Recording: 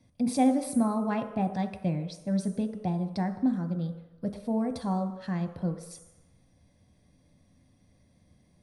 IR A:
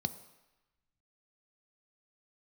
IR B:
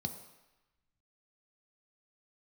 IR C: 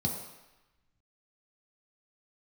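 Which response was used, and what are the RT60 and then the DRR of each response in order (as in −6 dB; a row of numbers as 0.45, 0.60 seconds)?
B; 1.0, 1.0, 1.0 seconds; 11.0, 6.0, −0.5 decibels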